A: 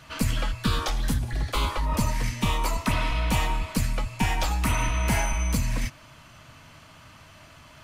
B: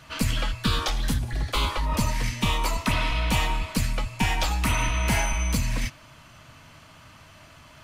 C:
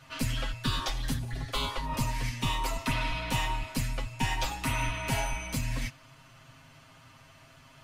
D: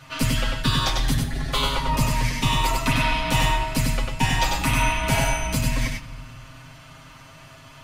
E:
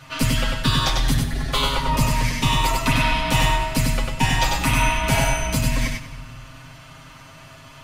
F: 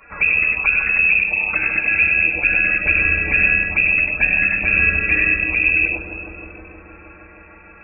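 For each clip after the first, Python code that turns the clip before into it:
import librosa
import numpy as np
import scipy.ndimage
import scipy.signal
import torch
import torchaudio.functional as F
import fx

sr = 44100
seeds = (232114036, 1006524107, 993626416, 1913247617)

y1 = fx.dynamic_eq(x, sr, hz=3400.0, q=0.84, threshold_db=-42.0, ratio=4.0, max_db=4)
y2 = y1 + 0.79 * np.pad(y1, (int(7.5 * sr / 1000.0), 0))[:len(y1)]
y2 = F.gain(torch.from_numpy(y2), -7.5).numpy()
y3 = y2 + 10.0 ** (-3.5 / 20.0) * np.pad(y2, (int(97 * sr / 1000.0), 0))[:len(y2)]
y3 = fx.room_shoebox(y3, sr, seeds[0], volume_m3=1600.0, walls='mixed', distance_m=0.44)
y3 = F.gain(torch.from_numpy(y3), 7.5).numpy()
y4 = y3 + 10.0 ** (-17.0 / 20.0) * np.pad(y3, (int(194 * sr / 1000.0), 0))[:len(y3)]
y4 = F.gain(torch.from_numpy(y4), 2.0).numpy()
y5 = fx.env_flanger(y4, sr, rest_ms=5.1, full_db=-17.5)
y5 = fx.freq_invert(y5, sr, carrier_hz=2600)
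y5 = fx.echo_bbd(y5, sr, ms=157, stages=1024, feedback_pct=83, wet_db=-5)
y5 = F.gain(torch.from_numpy(y5), 2.5).numpy()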